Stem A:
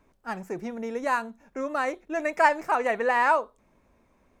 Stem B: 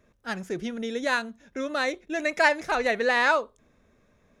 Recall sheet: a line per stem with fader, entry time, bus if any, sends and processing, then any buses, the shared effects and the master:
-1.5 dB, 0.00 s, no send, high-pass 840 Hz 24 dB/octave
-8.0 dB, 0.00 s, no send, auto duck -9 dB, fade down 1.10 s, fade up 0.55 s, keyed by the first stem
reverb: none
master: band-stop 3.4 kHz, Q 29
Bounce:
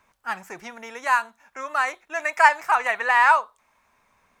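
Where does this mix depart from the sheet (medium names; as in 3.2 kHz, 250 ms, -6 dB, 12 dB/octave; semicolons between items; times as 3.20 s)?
stem A -1.5 dB -> +7.0 dB; master: missing band-stop 3.4 kHz, Q 29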